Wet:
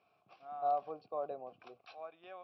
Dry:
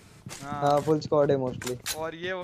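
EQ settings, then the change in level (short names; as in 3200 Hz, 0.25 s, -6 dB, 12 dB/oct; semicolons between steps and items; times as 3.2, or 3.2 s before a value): vowel filter a; brick-wall FIR low-pass 5800 Hz; -5.5 dB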